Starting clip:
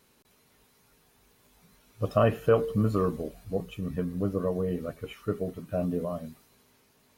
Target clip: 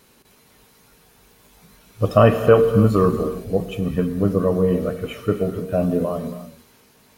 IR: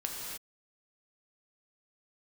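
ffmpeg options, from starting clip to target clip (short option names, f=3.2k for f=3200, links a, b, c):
-filter_complex "[0:a]asplit=2[a][b];[1:a]atrim=start_sample=2205,asetrate=43218,aresample=44100[c];[b][c]afir=irnorm=-1:irlink=0,volume=-7dB[d];[a][d]amix=inputs=2:normalize=0,volume=6.5dB"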